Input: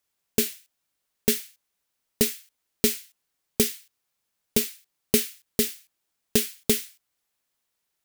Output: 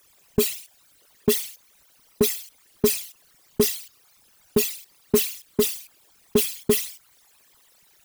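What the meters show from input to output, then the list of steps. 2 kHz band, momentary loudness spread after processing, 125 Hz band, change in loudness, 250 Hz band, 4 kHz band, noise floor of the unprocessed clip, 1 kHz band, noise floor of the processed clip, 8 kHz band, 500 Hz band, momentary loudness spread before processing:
0.0 dB, 13 LU, +3.0 dB, +1.5 dB, +2.0 dB, +0.5 dB, -80 dBFS, +6.0 dB, -59 dBFS, +0.5 dB, +6.0 dB, 10 LU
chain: resonances exaggerated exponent 3; power-law waveshaper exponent 0.7

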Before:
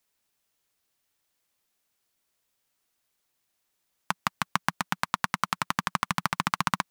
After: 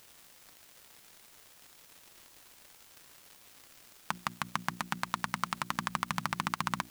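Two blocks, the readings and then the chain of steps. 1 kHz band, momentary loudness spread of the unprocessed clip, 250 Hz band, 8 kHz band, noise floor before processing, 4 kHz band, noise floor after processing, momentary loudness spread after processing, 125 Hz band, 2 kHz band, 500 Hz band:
-6.0 dB, 4 LU, -5.0 dB, -5.0 dB, -78 dBFS, -5.5 dB, -58 dBFS, 20 LU, -4.5 dB, -6.0 dB, -6.0 dB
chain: hum notches 60/120/180/240/300/360 Hz; in parallel at -11 dB: word length cut 8-bit, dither triangular; on the sum: crackle 260 per s -42 dBFS; peak limiter -10.5 dBFS, peak gain reduction 9 dB

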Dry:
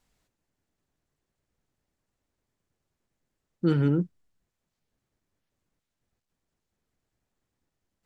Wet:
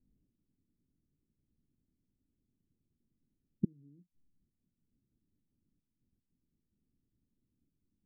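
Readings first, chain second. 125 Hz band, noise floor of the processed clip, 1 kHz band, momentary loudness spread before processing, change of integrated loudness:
-18.5 dB, under -85 dBFS, under -40 dB, 8 LU, -13.5 dB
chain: inverted gate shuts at -21 dBFS, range -39 dB; four-pole ladder low-pass 320 Hz, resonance 40%; trim +8.5 dB

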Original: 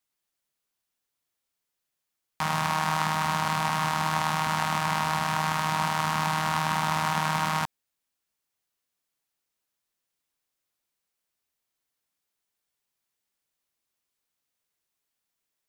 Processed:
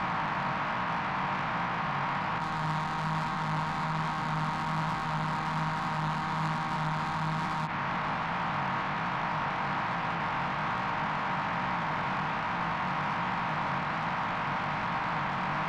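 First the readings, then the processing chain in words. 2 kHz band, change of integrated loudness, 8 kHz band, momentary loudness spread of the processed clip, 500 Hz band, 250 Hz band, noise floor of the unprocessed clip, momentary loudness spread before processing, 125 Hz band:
+1.0 dB, -4.5 dB, under -10 dB, 0 LU, +1.5 dB, +2.5 dB, -84 dBFS, 1 LU, +1.0 dB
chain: spectral levelling over time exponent 0.2; low-pass 2.4 kHz 24 dB/octave; dynamic bell 710 Hz, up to -4 dB, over -36 dBFS, Q 1.1; in parallel at -2 dB: compressor with a negative ratio -28 dBFS, ratio -0.5; on the sum: peak limiter -17 dBFS, peak gain reduction 12 dB; saturation -28 dBFS, distortion -11 dB; chorus 1.2 Hz, delay 16.5 ms, depth 5.2 ms; trim +5 dB

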